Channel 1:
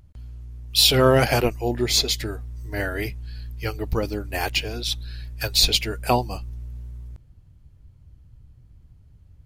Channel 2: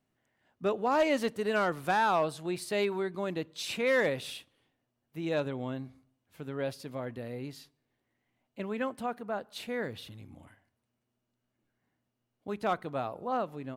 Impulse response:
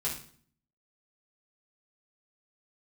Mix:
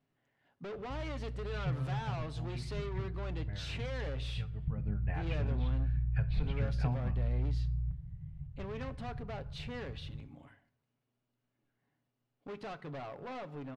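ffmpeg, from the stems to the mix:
-filter_complex "[0:a]lowpass=frequency=2200:width=0.5412,lowpass=frequency=2200:width=1.3066,acompressor=threshold=-30dB:ratio=5,lowshelf=frequency=230:width_type=q:width=3:gain=12.5,adelay=750,volume=-11.5dB,afade=type=in:start_time=4.66:duration=0.23:silence=0.446684,asplit=2[link_01][link_02];[link_02]volume=-12dB[link_03];[1:a]aecho=1:1:7.2:0.32,acompressor=threshold=-30dB:ratio=6,asoftclip=type=hard:threshold=-38.5dB,volume=-2.5dB,asplit=2[link_04][link_05];[link_05]volume=-18.5dB[link_06];[2:a]atrim=start_sample=2205[link_07];[link_03][link_06]amix=inputs=2:normalize=0[link_08];[link_08][link_07]afir=irnorm=-1:irlink=0[link_09];[link_01][link_04][link_09]amix=inputs=3:normalize=0,lowpass=4600"

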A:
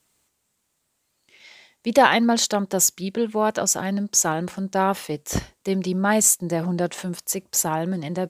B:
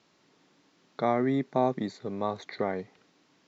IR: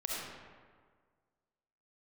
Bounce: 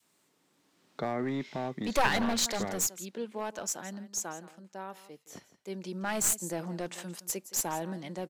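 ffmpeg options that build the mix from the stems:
-filter_complex "[0:a]highpass=210,volume=7.5dB,afade=type=out:start_time=2.55:duration=0.41:silence=0.421697,afade=type=out:start_time=3.85:duration=0.79:silence=0.398107,afade=type=in:start_time=5.46:duration=0.74:silence=0.237137,asplit=2[link_01][link_02];[link_02]volume=-16.5dB[link_03];[1:a]dynaudnorm=framelen=130:gausssize=13:maxgain=11.5dB,alimiter=limit=-11dB:level=0:latency=1:release=262,acrossover=split=500|3000[link_04][link_05][link_06];[link_04]acompressor=threshold=-19dB:ratio=6[link_07];[link_07][link_05][link_06]amix=inputs=3:normalize=0,volume=-9dB[link_08];[link_03]aecho=0:1:168:1[link_09];[link_01][link_08][link_09]amix=inputs=3:normalize=0,aeval=exprs='clip(val(0),-1,0.0447)':channel_layout=same,adynamicequalizer=threshold=0.00631:dfrequency=470:dqfactor=0.8:tfrequency=470:tqfactor=0.8:attack=5:release=100:ratio=0.375:range=2.5:mode=cutabove:tftype=bell"

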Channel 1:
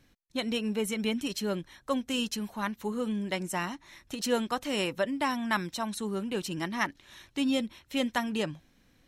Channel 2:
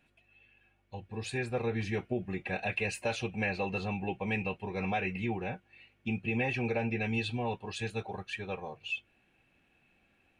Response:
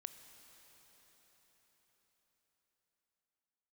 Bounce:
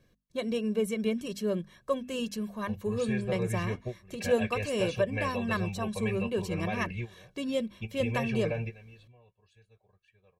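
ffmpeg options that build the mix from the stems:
-filter_complex "[0:a]equalizer=frequency=250:width_type=o:width=2.1:gain=13.5,bandreject=frequency=50:width_type=h:width=6,bandreject=frequency=100:width_type=h:width=6,bandreject=frequency=150:width_type=h:width=6,bandreject=frequency=200:width_type=h:width=6,bandreject=frequency=250:width_type=h:width=6,volume=-8dB,asplit=2[link_01][link_02];[1:a]lowshelf=frequency=150:gain=8,adelay=1750,volume=-5dB,afade=type=out:start_time=8.82:duration=0.41:silence=0.398107[link_03];[link_02]apad=whole_len=535518[link_04];[link_03][link_04]sidechaingate=range=-18dB:threshold=-51dB:ratio=16:detection=peak[link_05];[link_01][link_05]amix=inputs=2:normalize=0,aecho=1:1:1.8:0.77"

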